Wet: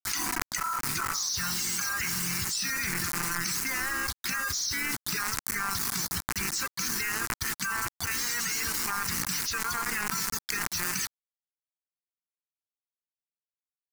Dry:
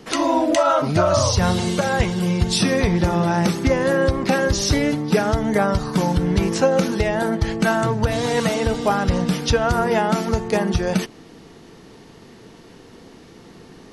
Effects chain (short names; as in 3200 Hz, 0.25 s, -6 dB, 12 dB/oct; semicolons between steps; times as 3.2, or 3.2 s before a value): tracing distortion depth 0.034 ms; weighting filter ITU-R 468; spectral gate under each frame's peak -15 dB strong; passive tone stack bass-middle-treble 6-0-2; notch 860 Hz, Q 12; bit-crush 7-bit; fixed phaser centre 1500 Hz, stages 4; harmoniser -5 st -8 dB; fast leveller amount 100%